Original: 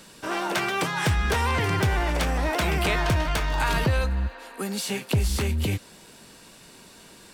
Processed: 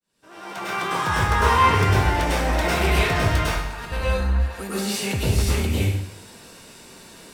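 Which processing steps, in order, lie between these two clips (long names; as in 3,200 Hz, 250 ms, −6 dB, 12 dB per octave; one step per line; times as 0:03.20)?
fade in at the beginning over 1.51 s
0:00.58–0:01.66: parametric band 1,100 Hz +10.5 dB 0.69 octaves
0:03.45–0:03.92: compressor whose output falls as the input rises −32 dBFS, ratio −0.5
soft clipping −15 dBFS, distortion −21 dB
dense smooth reverb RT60 0.79 s, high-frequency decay 0.85×, pre-delay 90 ms, DRR −7.5 dB
level −3.5 dB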